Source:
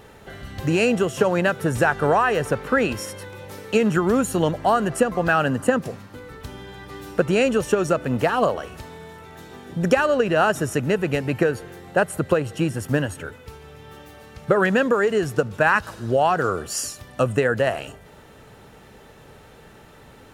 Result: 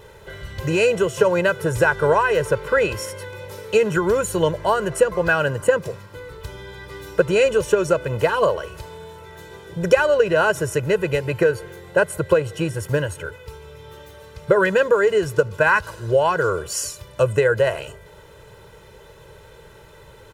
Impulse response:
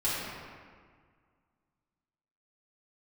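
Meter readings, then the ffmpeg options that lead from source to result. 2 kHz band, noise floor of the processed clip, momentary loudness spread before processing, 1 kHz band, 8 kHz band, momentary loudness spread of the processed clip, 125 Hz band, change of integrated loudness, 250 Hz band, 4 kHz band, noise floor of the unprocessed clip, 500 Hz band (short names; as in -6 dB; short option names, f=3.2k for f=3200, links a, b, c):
+2.0 dB, -46 dBFS, 19 LU, -0.5 dB, +1.5 dB, 18 LU, 0.0 dB, +1.5 dB, -4.0 dB, +1.5 dB, -47 dBFS, +3.5 dB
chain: -af "aecho=1:1:2:0.85,volume=-1dB"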